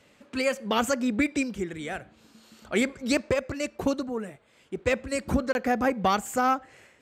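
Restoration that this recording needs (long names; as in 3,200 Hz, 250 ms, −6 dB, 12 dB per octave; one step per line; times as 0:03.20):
repair the gap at 0:05.53, 21 ms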